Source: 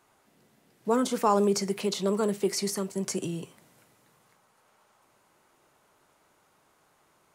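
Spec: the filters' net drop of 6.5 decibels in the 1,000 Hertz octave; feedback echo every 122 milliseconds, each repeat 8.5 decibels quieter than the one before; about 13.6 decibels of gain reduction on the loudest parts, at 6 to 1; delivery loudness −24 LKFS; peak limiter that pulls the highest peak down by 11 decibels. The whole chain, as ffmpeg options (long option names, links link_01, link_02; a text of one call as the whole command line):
ffmpeg -i in.wav -af "equalizer=frequency=1000:width_type=o:gain=-8,acompressor=threshold=-36dB:ratio=6,alimiter=level_in=9dB:limit=-24dB:level=0:latency=1,volume=-9dB,aecho=1:1:122|244|366|488:0.376|0.143|0.0543|0.0206,volume=18dB" out.wav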